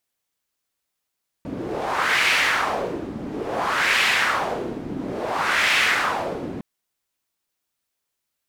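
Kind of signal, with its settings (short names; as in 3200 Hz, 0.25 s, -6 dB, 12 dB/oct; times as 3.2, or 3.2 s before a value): wind-like swept noise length 5.16 s, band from 260 Hz, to 2300 Hz, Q 2.1, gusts 3, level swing 12 dB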